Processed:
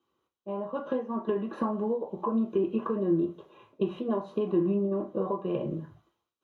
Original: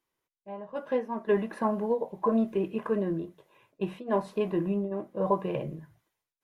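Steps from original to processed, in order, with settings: bell 860 Hz +9 dB 2.8 oct; compressor 6:1, threshold -29 dBFS, peak gain reduction 16 dB; reverb RT60 0.30 s, pre-delay 3 ms, DRR 1 dB; gain -9 dB

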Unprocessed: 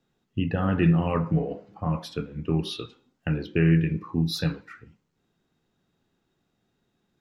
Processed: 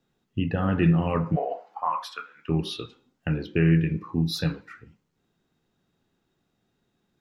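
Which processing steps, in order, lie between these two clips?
1.35–2.48 resonant high-pass 620 Hz -> 1500 Hz, resonance Q 4.3

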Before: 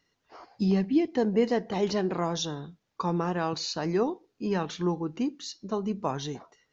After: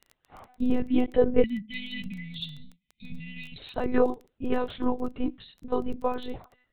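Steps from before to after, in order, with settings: spectral delete 1.42–3.58, 260–1900 Hz; dynamic EQ 490 Hz, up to +7 dB, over -41 dBFS, Q 1.7; monotone LPC vocoder at 8 kHz 250 Hz; crackle 15/s -37 dBFS

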